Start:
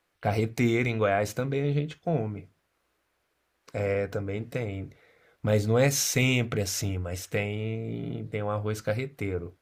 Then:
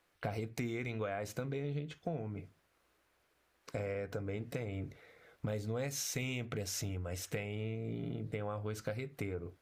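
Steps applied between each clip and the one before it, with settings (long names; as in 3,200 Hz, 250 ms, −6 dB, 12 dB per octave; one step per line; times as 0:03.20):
downward compressor 6 to 1, threshold −36 dBFS, peak gain reduction 16.5 dB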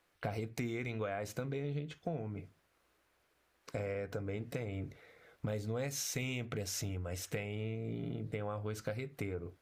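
no processing that can be heard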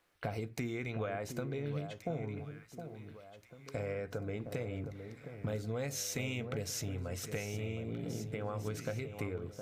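delay that swaps between a low-pass and a high-pass 714 ms, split 1,300 Hz, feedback 64%, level −8 dB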